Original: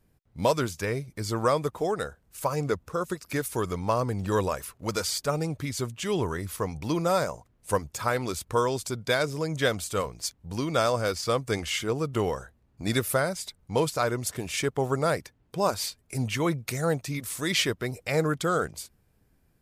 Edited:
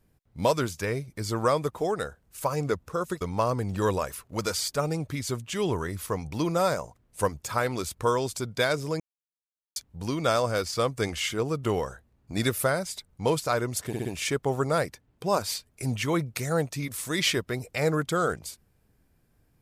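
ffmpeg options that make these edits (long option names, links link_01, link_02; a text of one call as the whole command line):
ffmpeg -i in.wav -filter_complex "[0:a]asplit=7[link_01][link_02][link_03][link_04][link_05][link_06][link_07];[link_01]atrim=end=3.212[link_08];[link_02]atrim=start=3.708:end=9.5,asetpts=PTS-STARTPTS,afade=type=out:start_time=5.788:duration=0.004:curve=hsin[link_09];[link_03]atrim=start=9.5:end=10.26,asetpts=PTS-STARTPTS,volume=0[link_10];[link_04]atrim=start=10.26:end=14.432,asetpts=PTS-STARTPTS,afade=type=in:duration=0.004:curve=hsin[link_11];[link_05]atrim=start=14.368:end=14.432[link_12];[link_06]atrim=start=14.368:end=14.432[link_13];[link_07]atrim=start=14.368[link_14];[link_09][link_10][link_11]concat=n=3:v=0:a=1[link_15];[link_08][link_15]acrossfade=duration=0.004:curve1=hsin:curve2=hsin[link_16];[link_16][link_12]acrossfade=duration=0.004:curve1=hsin:curve2=hsin[link_17];[link_17][link_13]acrossfade=duration=0.004:curve1=hsin:curve2=hsin[link_18];[link_18][link_14]acrossfade=duration=0.004:curve1=hsin:curve2=hsin" out.wav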